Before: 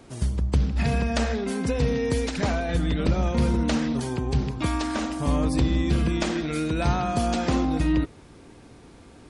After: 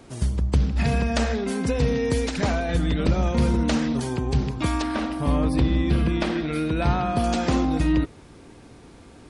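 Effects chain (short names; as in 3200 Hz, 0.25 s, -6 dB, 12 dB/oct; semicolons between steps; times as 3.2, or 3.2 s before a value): 4.82–7.24 bell 7000 Hz -14.5 dB 0.65 oct; gain +1.5 dB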